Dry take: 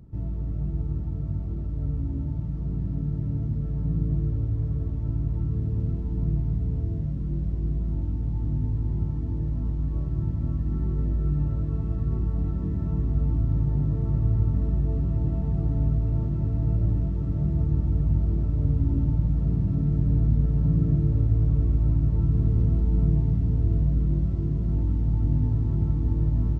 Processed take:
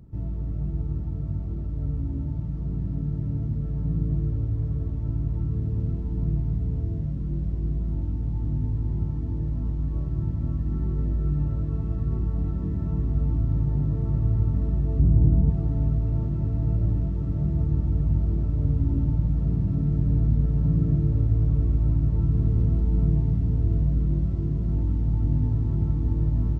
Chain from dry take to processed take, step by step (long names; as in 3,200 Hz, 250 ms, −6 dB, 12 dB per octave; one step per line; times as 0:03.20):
0:14.99–0:15.50: tilt shelving filter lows +7.5 dB, about 640 Hz